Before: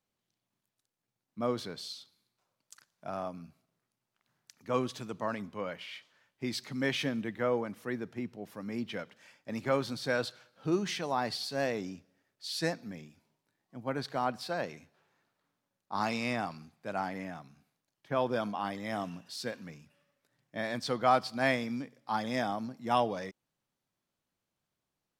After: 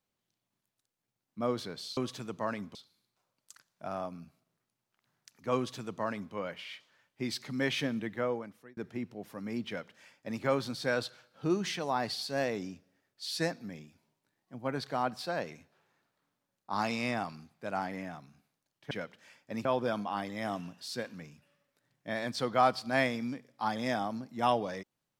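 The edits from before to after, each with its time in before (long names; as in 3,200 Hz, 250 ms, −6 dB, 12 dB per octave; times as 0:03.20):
0:04.78–0:05.56: duplicate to 0:01.97
0:07.33–0:07.99: fade out
0:08.89–0:09.63: duplicate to 0:18.13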